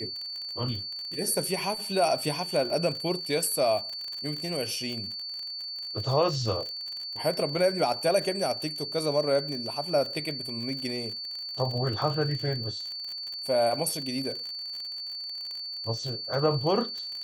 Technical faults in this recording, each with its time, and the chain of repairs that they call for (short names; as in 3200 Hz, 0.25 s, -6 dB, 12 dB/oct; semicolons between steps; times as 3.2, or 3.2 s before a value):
crackle 48/s -33 dBFS
tone 4500 Hz -34 dBFS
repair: de-click; notch 4500 Hz, Q 30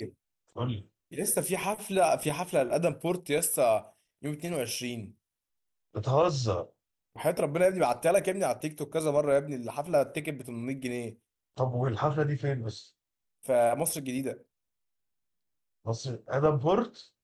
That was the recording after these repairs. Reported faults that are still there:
none